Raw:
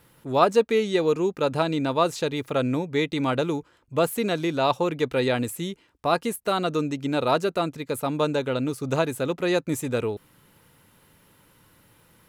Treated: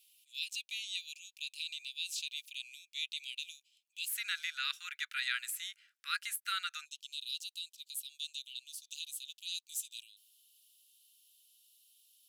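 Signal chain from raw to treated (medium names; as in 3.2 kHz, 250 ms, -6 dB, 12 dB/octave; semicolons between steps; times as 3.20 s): steep high-pass 2.5 kHz 72 dB/octave, from 4.08 s 1.4 kHz, from 6.84 s 2.9 kHz; trim -3 dB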